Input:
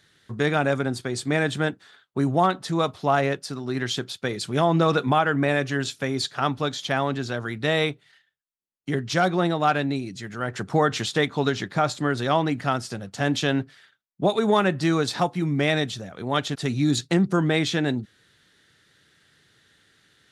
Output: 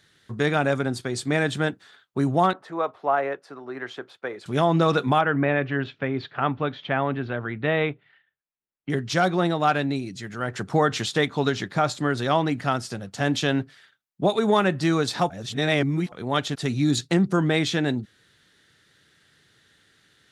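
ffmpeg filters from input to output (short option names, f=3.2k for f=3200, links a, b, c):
-filter_complex "[0:a]asettb=1/sr,asplit=3[a][b][c];[a]atrim=end=2.534[d];[b]atrim=start=2.53:end=4.46,asetpts=PTS-STARTPTS,afade=t=in:d=0.004:c=qsin,afade=t=out:st=1.926:d=0.004:c=qsin,acrossover=split=360 2100:gain=0.1 1 0.0794[e][f][g];[e][f][g]amix=inputs=3:normalize=0[h];[c]atrim=start=4.456[i];[d][h]acrossfade=d=0.004:c1=hsin:c2=qsin[j];[j][i]acrossfade=d=0.004:c1=qsin:c2=hsin,asettb=1/sr,asplit=3[k][l][m];[k]atrim=end=5.214[n];[l]atrim=start=5.21:end=8.9,asetpts=PTS-STARTPTS,afade=t=in:d=0.004:c=qsin,afade=t=out:st=3.686:d=0.004:c=qsin,lowpass=f=2.8k:w=0.5412,lowpass=f=2.8k:w=1.3066[o];[m]atrim=start=8.896[p];[n][o]acrossfade=d=0.004:c1=hsin:c2=qsin[q];[q][p]acrossfade=d=0.004:c1=qsin:c2=hsin,asplit=3[r][s][t];[r]atrim=end=15.302[u];[s]atrim=start=15.298:end=16.122,asetpts=PTS-STARTPTS,areverse[v];[t]atrim=start=16.118[w];[u][v]acrossfade=d=0.004:c1=hsin:c2=hsin[x];[x][w]acrossfade=d=0.004:c1=hsin:c2=hsin"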